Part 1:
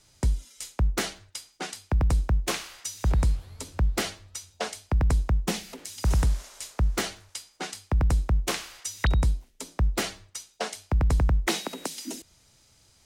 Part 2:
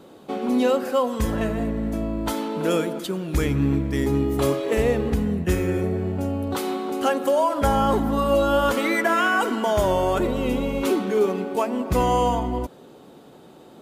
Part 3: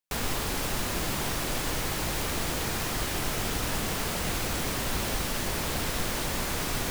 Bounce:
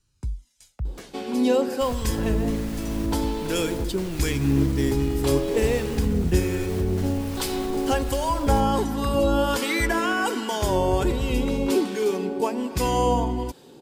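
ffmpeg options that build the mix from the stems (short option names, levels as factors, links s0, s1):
-filter_complex "[0:a]flanger=delay=0.7:depth=1.4:regen=-24:speed=0.34:shape=sinusoidal,volume=0.282[s0];[1:a]equalizer=f=200:t=o:w=0.33:g=-4,equalizer=f=630:t=o:w=0.33:g=-10,equalizer=f=1250:t=o:w=0.33:g=-10,equalizer=f=2000:t=o:w=0.33:g=-3,equalizer=f=5000:t=o:w=0.33:g=7,equalizer=f=8000:t=o:w=0.33:g=4,acrossover=split=1100[s1][s2];[s1]aeval=exprs='val(0)*(1-0.5/2+0.5/2*cos(2*PI*1.3*n/s))':c=same[s3];[s2]aeval=exprs='val(0)*(1-0.5/2-0.5/2*cos(2*PI*1.3*n/s))':c=same[s4];[s3][s4]amix=inputs=2:normalize=0,adelay=850,volume=1.41[s5];[2:a]alimiter=level_in=1.26:limit=0.0631:level=0:latency=1:release=189,volume=0.794,adelay=1700,volume=0.596[s6];[s0][s6]amix=inputs=2:normalize=0,lowshelf=f=170:g=10,alimiter=limit=0.0841:level=0:latency=1:release=374,volume=1[s7];[s5][s7]amix=inputs=2:normalize=0"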